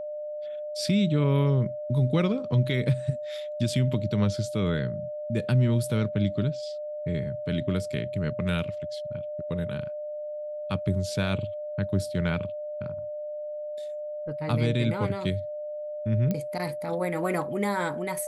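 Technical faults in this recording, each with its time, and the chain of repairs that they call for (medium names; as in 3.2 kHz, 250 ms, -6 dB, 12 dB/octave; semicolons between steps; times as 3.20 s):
whine 600 Hz -32 dBFS
16.31 s: pop -16 dBFS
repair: de-click; band-stop 600 Hz, Q 30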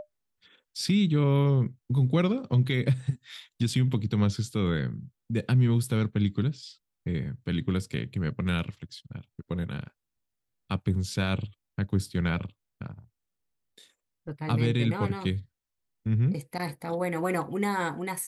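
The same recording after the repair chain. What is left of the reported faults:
nothing left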